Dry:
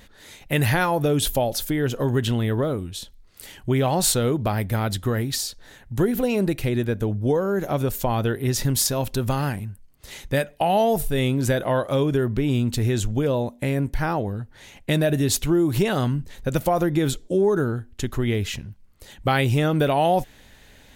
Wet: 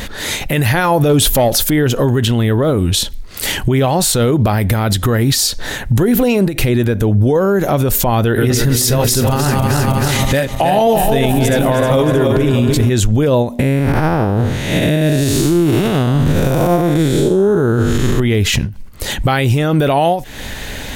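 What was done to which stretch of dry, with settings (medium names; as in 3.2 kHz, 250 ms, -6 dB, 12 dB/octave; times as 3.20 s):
1.09–1.64 s: waveshaping leveller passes 1
8.20–12.90 s: backward echo that repeats 157 ms, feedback 68%, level -4.5 dB
13.59–18.20 s: spectral blur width 287 ms
whole clip: compression 4:1, threshold -31 dBFS; loudness maximiser +28.5 dB; endings held to a fixed fall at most 160 dB/s; trim -4 dB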